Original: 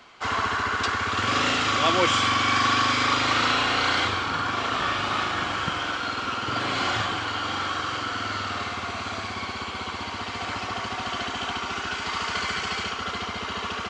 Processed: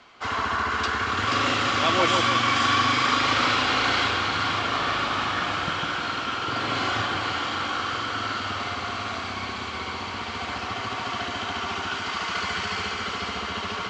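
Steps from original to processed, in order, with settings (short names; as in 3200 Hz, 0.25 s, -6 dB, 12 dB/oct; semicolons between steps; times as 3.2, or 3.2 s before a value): LPF 7300 Hz 12 dB/oct; on a send: split-band echo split 1700 Hz, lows 0.153 s, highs 0.482 s, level -4 dB; on the sum: gain -1.5 dB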